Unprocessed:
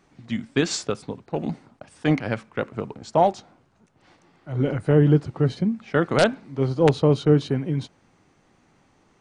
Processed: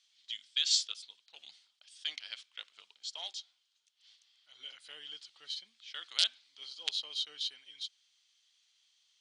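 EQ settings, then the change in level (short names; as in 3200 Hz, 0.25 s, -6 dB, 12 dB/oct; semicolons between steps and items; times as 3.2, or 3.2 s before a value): ladder band-pass 4800 Hz, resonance 45%; bell 3200 Hz +10.5 dB 0.23 oct; high shelf 7600 Hz +5 dB; +7.0 dB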